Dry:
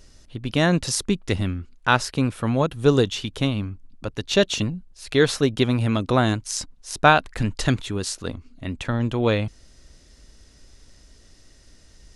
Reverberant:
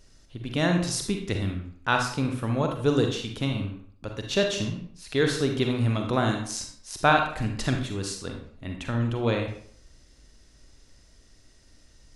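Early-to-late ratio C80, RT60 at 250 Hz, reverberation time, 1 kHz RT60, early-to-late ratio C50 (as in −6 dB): 8.5 dB, 0.55 s, 0.60 s, 0.60 s, 4.5 dB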